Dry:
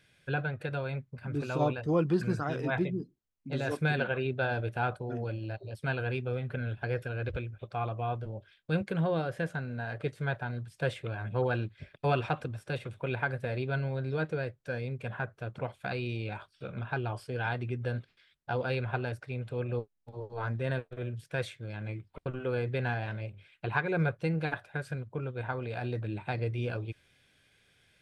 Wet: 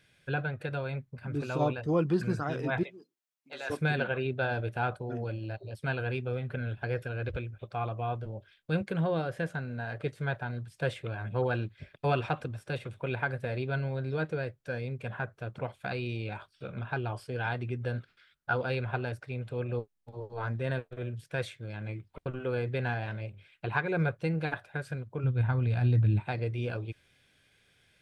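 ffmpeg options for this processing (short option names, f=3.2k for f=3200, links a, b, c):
-filter_complex "[0:a]asettb=1/sr,asplit=3[a][b][c];[a]atrim=end=2.834[d];[b]atrim=start=2.83:end=3.7,asetpts=PTS-STARTPTS,afade=t=in:d=0.004:c=qsin,afade=t=out:st=0.866:d=0.004:c=qsin,highpass=760[e];[c]atrim=start=3.696[f];[d][e]acrossfade=d=0.004:c1=hsin:c2=qsin[g];[g][f]acrossfade=d=0.004:c1=qsin:c2=hsin,asettb=1/sr,asplit=3[h][i][j];[h]atrim=end=17.984[k];[i]atrim=start=17.98:end=18.61,asetpts=PTS-STARTPTS,afade=t=in:d=0.004:c=qsin,afade=t=out:st=0.626:d=0.004:c=qsin,equalizer=f=1.4k:t=o:w=0.3:g=12.5[l];[j]atrim=start=18.606[m];[k][l]acrossfade=d=0.004:c1=hsin:c2=qsin[n];[n][m]acrossfade=d=0.004:c1=qsin:c2=hsin,asplit=3[o][p][q];[o]afade=t=out:st=25.23:d=0.02[r];[p]asubboost=boost=5.5:cutoff=190,afade=t=in:st=25.23:d=0.02,afade=t=out:st=26.19:d=0.02[s];[q]afade=t=in:st=26.19:d=0.02[t];[r][s][t]amix=inputs=3:normalize=0"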